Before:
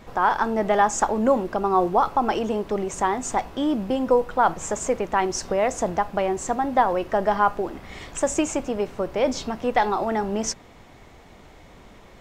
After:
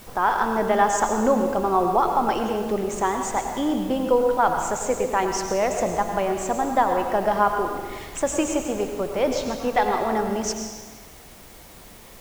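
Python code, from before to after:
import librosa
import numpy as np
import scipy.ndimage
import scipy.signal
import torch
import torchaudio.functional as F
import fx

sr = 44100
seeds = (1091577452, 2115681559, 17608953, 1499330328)

y = fx.rev_plate(x, sr, seeds[0], rt60_s=1.3, hf_ratio=0.95, predelay_ms=80, drr_db=4.5)
y = fx.quant_dither(y, sr, seeds[1], bits=8, dither='triangular')
y = y * 10.0 ** (-1.0 / 20.0)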